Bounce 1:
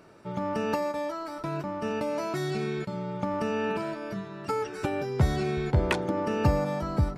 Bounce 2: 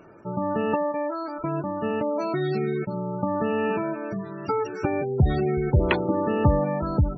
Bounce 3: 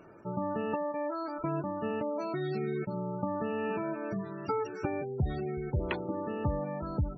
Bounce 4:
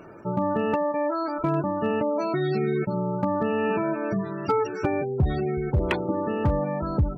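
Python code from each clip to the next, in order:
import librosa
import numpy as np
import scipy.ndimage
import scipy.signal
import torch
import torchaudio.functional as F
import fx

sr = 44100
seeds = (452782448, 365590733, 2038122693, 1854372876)

y1 = fx.spec_gate(x, sr, threshold_db=-20, keep='strong')
y1 = fx.peak_eq(y1, sr, hz=340.0, db=3.0, octaves=0.3)
y1 = y1 * librosa.db_to_amplitude(4.0)
y2 = fx.rider(y1, sr, range_db=5, speed_s=0.5)
y2 = y2 * librosa.db_to_amplitude(-8.5)
y3 = np.clip(10.0 ** (23.5 / 20.0) * y2, -1.0, 1.0) / 10.0 ** (23.5 / 20.0)
y3 = y3 * librosa.db_to_amplitude(8.5)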